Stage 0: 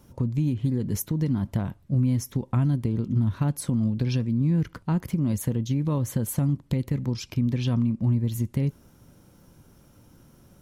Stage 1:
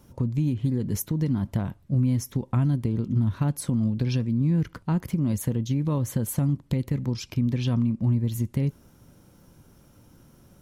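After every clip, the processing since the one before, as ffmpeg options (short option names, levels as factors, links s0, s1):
-af anull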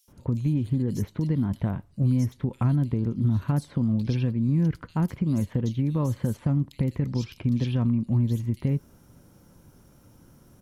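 -filter_complex "[0:a]acrossover=split=3100[s0][s1];[s0]adelay=80[s2];[s2][s1]amix=inputs=2:normalize=0,acrossover=split=4600[s3][s4];[s4]acompressor=threshold=0.00355:ratio=4:attack=1:release=60[s5];[s3][s5]amix=inputs=2:normalize=0"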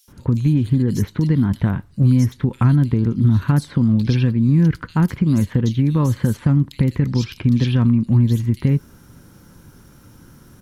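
-af "equalizer=f=630:t=o:w=0.67:g=-6,equalizer=f=1600:t=o:w=0.67:g=5,equalizer=f=4000:t=o:w=0.67:g=3,volume=2.66"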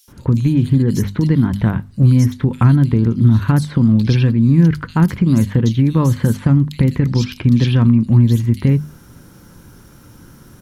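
-af "bandreject=f=50:t=h:w=6,bandreject=f=100:t=h:w=6,bandreject=f=150:t=h:w=6,bandreject=f=200:t=h:w=6,bandreject=f=250:t=h:w=6,volume=1.58"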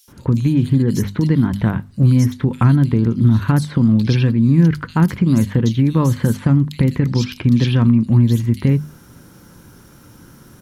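-af "lowshelf=f=74:g=-7"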